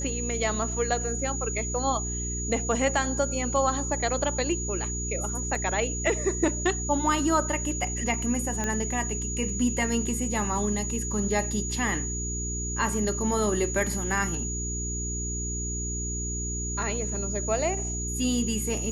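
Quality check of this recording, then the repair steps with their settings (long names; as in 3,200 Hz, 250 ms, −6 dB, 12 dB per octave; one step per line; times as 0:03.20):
mains hum 60 Hz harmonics 7 −33 dBFS
whistle 6,800 Hz −32 dBFS
0:05.55: drop-out 3 ms
0:08.64: click −16 dBFS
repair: click removal
hum removal 60 Hz, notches 7
notch filter 6,800 Hz, Q 30
repair the gap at 0:05.55, 3 ms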